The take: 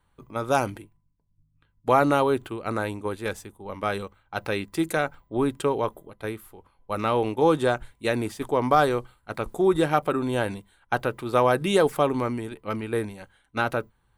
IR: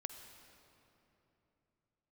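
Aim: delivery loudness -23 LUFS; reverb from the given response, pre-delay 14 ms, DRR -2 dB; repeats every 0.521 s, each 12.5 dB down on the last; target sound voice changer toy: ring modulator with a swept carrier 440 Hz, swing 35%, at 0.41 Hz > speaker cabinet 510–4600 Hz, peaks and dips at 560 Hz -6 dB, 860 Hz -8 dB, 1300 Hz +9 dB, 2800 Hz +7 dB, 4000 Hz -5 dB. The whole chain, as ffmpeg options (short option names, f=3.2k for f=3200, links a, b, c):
-filter_complex "[0:a]aecho=1:1:521|1042|1563:0.237|0.0569|0.0137,asplit=2[a][b];[1:a]atrim=start_sample=2205,adelay=14[c];[b][c]afir=irnorm=-1:irlink=0,volume=4.5dB[d];[a][d]amix=inputs=2:normalize=0,aeval=exprs='val(0)*sin(2*PI*440*n/s+440*0.35/0.41*sin(2*PI*0.41*n/s))':c=same,highpass=510,equalizer=f=560:t=q:w=4:g=-6,equalizer=f=860:t=q:w=4:g=-8,equalizer=f=1.3k:t=q:w=4:g=9,equalizer=f=2.8k:t=q:w=4:g=7,equalizer=f=4k:t=q:w=4:g=-5,lowpass=f=4.6k:w=0.5412,lowpass=f=4.6k:w=1.3066,volume=2dB"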